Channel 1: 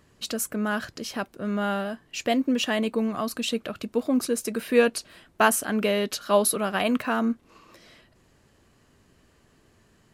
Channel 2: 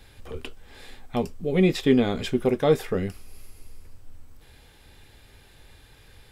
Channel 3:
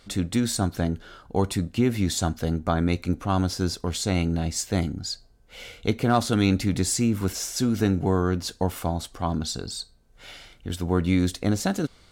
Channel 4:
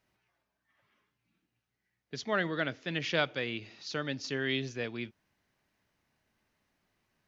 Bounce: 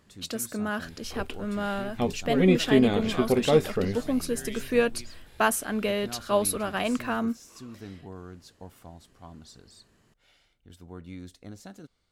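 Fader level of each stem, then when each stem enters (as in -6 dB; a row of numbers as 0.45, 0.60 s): -3.5, -1.0, -20.0, -10.0 dB; 0.00, 0.85, 0.00, 0.00 s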